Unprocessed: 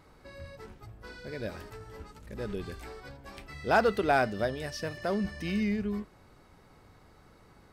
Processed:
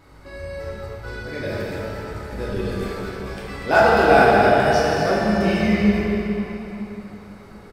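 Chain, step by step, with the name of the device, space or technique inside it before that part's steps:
cave (single-tap delay 240 ms −9 dB; convolution reverb RT60 3.6 s, pre-delay 3 ms, DRR −7.5 dB)
level +4 dB

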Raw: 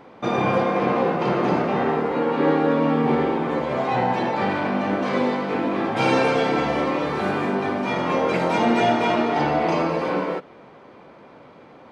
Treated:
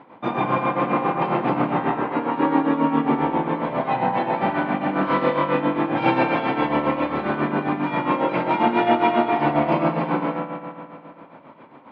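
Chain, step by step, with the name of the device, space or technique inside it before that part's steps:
0:04.89–0:05.61: flutter between parallel walls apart 4.5 metres, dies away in 0.76 s
combo amplifier with spring reverb and tremolo (spring reverb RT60 2.4 s, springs 54 ms, chirp 40 ms, DRR 3 dB; amplitude tremolo 7.4 Hz, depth 64%; loudspeaker in its box 82–3,500 Hz, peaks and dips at 85 Hz −5 dB, 290 Hz +3 dB, 450 Hz −5 dB, 960 Hz +6 dB)

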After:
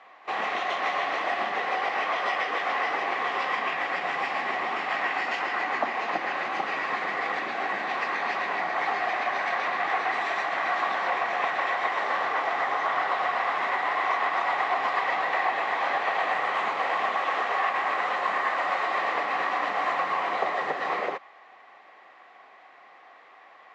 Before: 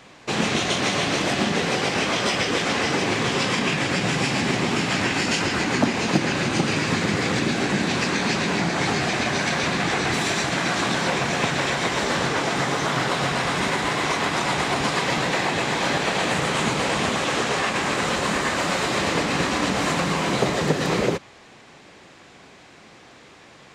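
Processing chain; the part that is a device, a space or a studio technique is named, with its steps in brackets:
tin-can telephone (band-pass filter 610–2,400 Hz; hollow resonant body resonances 760/1,100/1,900 Hz, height 10 dB, ringing for 20 ms)
echo ahead of the sound 39 ms −22.5 dB
level −5.5 dB

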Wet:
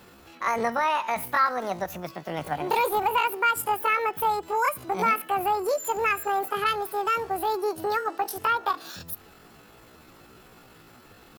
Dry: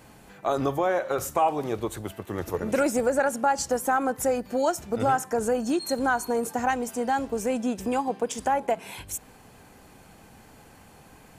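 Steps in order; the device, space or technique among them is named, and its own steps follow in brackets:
chipmunk voice (pitch shifter +9 semitones)

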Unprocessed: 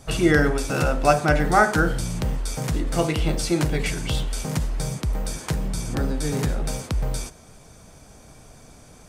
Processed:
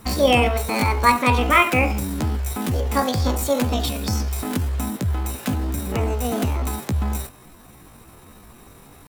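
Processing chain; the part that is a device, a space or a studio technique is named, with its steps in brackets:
chipmunk voice (pitch shifter +8.5 semitones)
level +1.5 dB

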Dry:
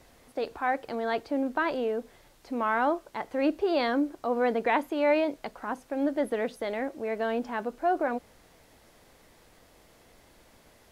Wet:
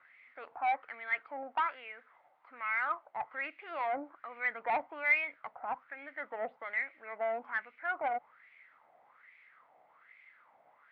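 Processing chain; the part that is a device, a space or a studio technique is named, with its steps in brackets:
0:01.30–0:03.25: low-shelf EQ 310 Hz −8 dB
wah-wah guitar rig (LFO wah 1.2 Hz 720–2,300 Hz, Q 5.7; tube saturation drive 31 dB, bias 0.2; loudspeaker in its box 78–3,600 Hz, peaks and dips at 140 Hz +7 dB, 390 Hz −6 dB, 1,300 Hz +7 dB, 2,100 Hz +9 dB)
level +4.5 dB

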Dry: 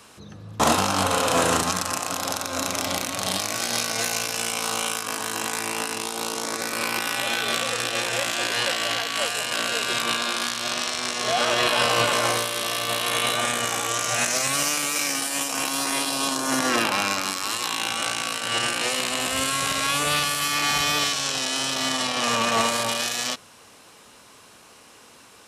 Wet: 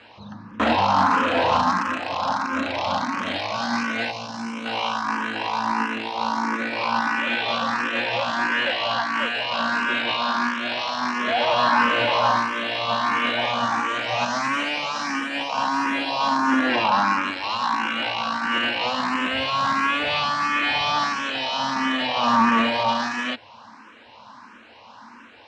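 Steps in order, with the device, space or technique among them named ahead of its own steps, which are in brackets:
barber-pole phaser into a guitar amplifier (frequency shifter mixed with the dry sound +1.5 Hz; soft clipping −20 dBFS, distortion −13 dB; loudspeaker in its box 89–4,200 Hz, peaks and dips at 160 Hz −10 dB, 230 Hz +10 dB, 410 Hz −9 dB, 940 Hz +10 dB, 1,600 Hz +4 dB, 3,500 Hz −4 dB)
0:04.11–0:04.66: parametric band 1,700 Hz −10 dB 2.7 octaves
level +5.5 dB

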